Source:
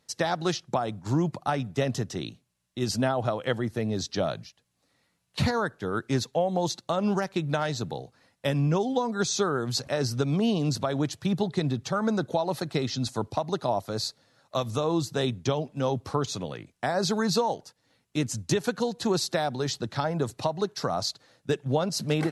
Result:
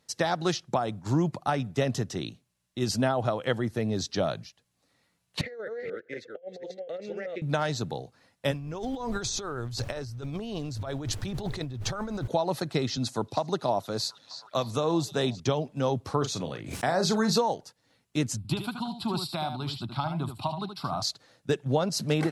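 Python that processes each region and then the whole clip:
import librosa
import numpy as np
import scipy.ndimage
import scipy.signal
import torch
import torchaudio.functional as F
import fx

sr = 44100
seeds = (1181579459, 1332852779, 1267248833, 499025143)

y = fx.chain(x, sr, fx.reverse_delay(ms=245, wet_db=-3),
    fx.double_bandpass(hz=1000.0, octaves=2.0),
    fx.over_compress(threshold_db=-36.0, ratio=-0.5), at=(5.41, 7.42))
y = fx.low_shelf_res(y, sr, hz=130.0, db=7.5, q=3.0, at=(8.51, 12.27), fade=0.02)
y = fx.dmg_noise_colour(y, sr, seeds[0], colour='brown', level_db=-42.0, at=(8.51, 12.27), fade=0.02)
y = fx.over_compress(y, sr, threshold_db=-33.0, ratio=-1.0, at=(8.51, 12.27), fade=0.02)
y = fx.chain(y, sr, fx.highpass(hz=110.0, slope=12),
    fx.echo_stepped(ms=312, hz=4400.0, octaves=-0.7, feedback_pct=70, wet_db=-10), at=(12.97, 15.4))
y = fx.chain(y, sr, fx.doubler(ms=37.0, db=-9.0),
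    fx.pre_swell(db_per_s=75.0), at=(16.18, 17.38))
y = fx.chain(y, sr, fx.fixed_phaser(hz=1800.0, stages=6),
    fx.echo_single(ms=76, db=-8.0), at=(18.37, 21.02))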